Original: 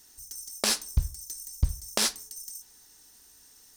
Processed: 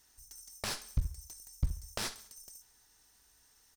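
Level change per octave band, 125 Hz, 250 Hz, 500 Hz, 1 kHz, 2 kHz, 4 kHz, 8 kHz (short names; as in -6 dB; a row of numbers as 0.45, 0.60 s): -6.0, -8.0, -10.0, -7.5, -8.0, -12.0, -13.0 dB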